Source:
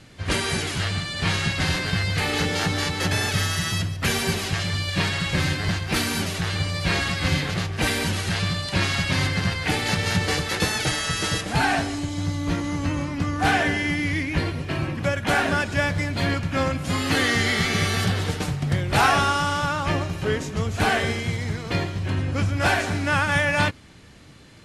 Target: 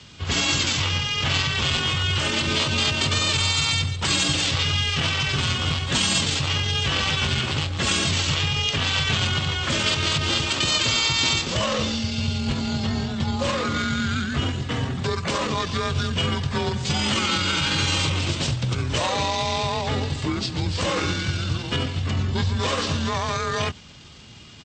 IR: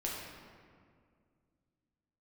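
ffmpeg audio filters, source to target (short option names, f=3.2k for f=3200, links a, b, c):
-af "afreqshift=37,alimiter=limit=-16dB:level=0:latency=1:release=69,areverse,acompressor=mode=upward:threshold=-45dB:ratio=2.5,areverse,asetrate=30296,aresample=44100,atempo=1.45565,highshelf=f=2.4k:t=q:w=1.5:g=8,volume=1.5dB"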